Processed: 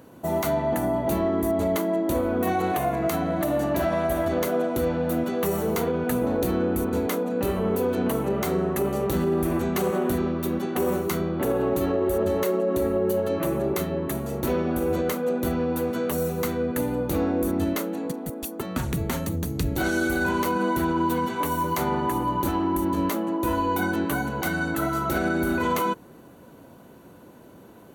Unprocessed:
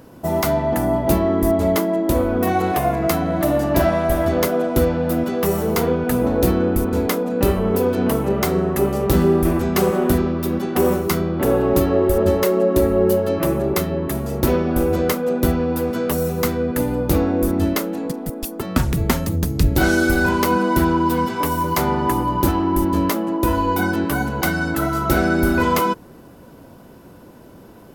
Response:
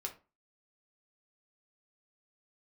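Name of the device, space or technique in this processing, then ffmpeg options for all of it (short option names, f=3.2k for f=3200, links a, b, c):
PA system with an anti-feedback notch: -af "highpass=f=110:p=1,asuperstop=centerf=5100:order=4:qfactor=7.6,alimiter=limit=-11.5dB:level=0:latency=1:release=41,volume=-4dB"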